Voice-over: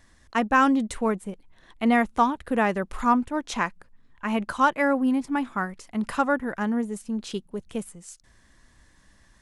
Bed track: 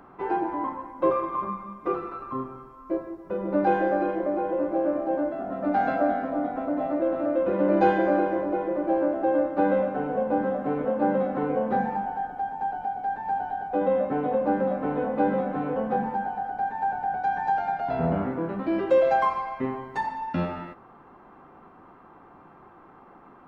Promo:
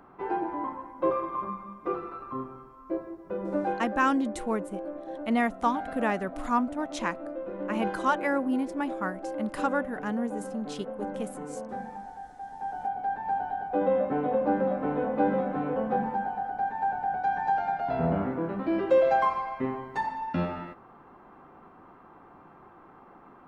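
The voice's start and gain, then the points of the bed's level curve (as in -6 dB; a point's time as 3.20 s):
3.45 s, -5.0 dB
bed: 3.51 s -3.5 dB
3.88 s -12 dB
12.38 s -12 dB
12.85 s -1.5 dB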